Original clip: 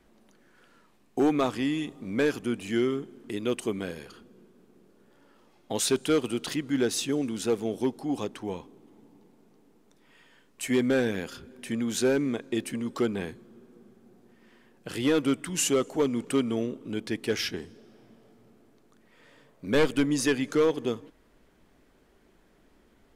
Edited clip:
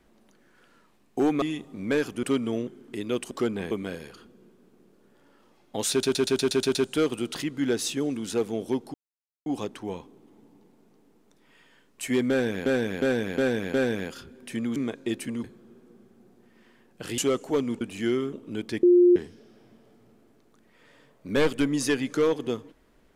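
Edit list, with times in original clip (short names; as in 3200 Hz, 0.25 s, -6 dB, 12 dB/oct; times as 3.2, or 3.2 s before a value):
1.42–1.7 cut
2.51–3.03 swap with 16.27–16.71
5.87 stutter 0.12 s, 8 plays
8.06 insert silence 0.52 s
10.9–11.26 loop, 5 plays
11.92–12.22 cut
12.9–13.3 move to 3.67
15.04–15.64 cut
17.21–17.54 bleep 354 Hz -13 dBFS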